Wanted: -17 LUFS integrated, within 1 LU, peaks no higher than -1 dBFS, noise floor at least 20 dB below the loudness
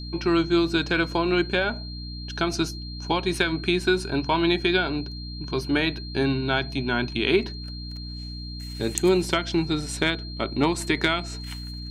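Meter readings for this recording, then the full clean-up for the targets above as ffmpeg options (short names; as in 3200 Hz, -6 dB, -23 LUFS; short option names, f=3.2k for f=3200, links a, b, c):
hum 60 Hz; harmonics up to 300 Hz; hum level -33 dBFS; steady tone 4200 Hz; tone level -39 dBFS; loudness -24.5 LUFS; peak -3.5 dBFS; loudness target -17.0 LUFS
-> -af "bandreject=f=60:t=h:w=4,bandreject=f=120:t=h:w=4,bandreject=f=180:t=h:w=4,bandreject=f=240:t=h:w=4,bandreject=f=300:t=h:w=4"
-af "bandreject=f=4.2k:w=30"
-af "volume=7.5dB,alimiter=limit=-1dB:level=0:latency=1"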